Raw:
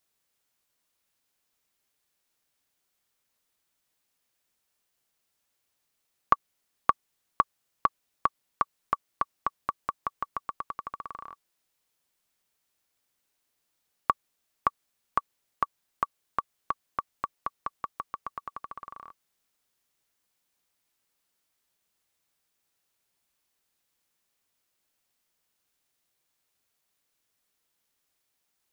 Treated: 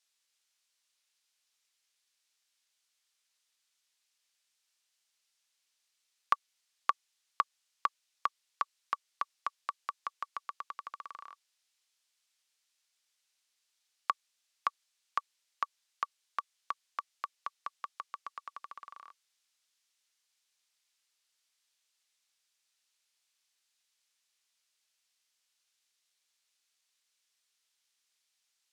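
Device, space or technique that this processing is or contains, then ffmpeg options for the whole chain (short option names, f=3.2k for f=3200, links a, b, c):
piezo pickup straight into a mixer: -af "lowpass=5k,aderivative,volume=10dB"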